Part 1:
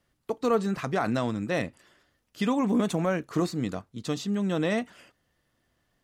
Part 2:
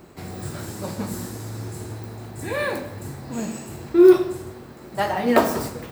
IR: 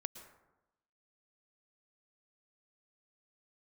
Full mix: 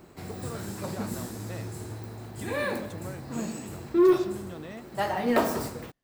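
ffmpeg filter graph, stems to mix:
-filter_complex "[0:a]acompressor=threshold=-28dB:ratio=6,volume=-10dB[link_01];[1:a]asoftclip=type=tanh:threshold=-9.5dB,volume=-4.5dB[link_02];[link_01][link_02]amix=inputs=2:normalize=0"

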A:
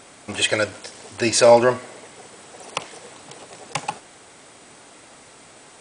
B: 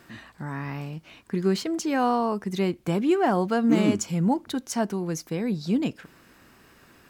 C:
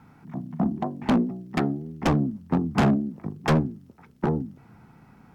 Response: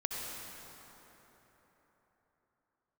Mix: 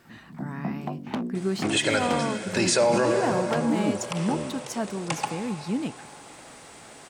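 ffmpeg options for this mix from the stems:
-filter_complex "[0:a]adelay=1350,volume=-4dB,asplit=2[link_01][link_02];[link_02]volume=-6dB[link_03];[1:a]volume=-4dB[link_04];[2:a]highpass=110,acompressor=threshold=-27dB:ratio=4,adelay=50,volume=-1dB[link_05];[3:a]atrim=start_sample=2205[link_06];[link_03][link_06]afir=irnorm=-1:irlink=0[link_07];[link_01][link_04][link_05][link_07]amix=inputs=4:normalize=0,alimiter=limit=-13dB:level=0:latency=1:release=45"

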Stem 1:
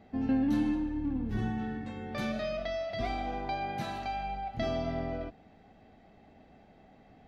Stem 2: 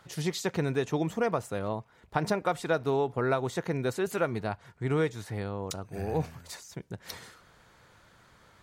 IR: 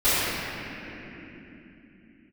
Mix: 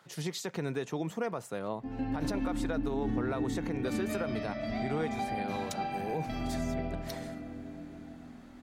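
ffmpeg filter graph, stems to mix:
-filter_complex "[0:a]bandreject=frequency=50:width_type=h:width=6,bandreject=frequency=100:width_type=h:width=6,adelay=1700,volume=-7dB,asplit=2[link_01][link_02];[link_02]volume=-16dB[link_03];[1:a]highpass=frequency=130:width=0.5412,highpass=frequency=130:width=1.3066,volume=-3dB[link_04];[2:a]atrim=start_sample=2205[link_05];[link_03][link_05]afir=irnorm=-1:irlink=0[link_06];[link_01][link_04][link_06]amix=inputs=3:normalize=0,alimiter=limit=-23.5dB:level=0:latency=1:release=66"

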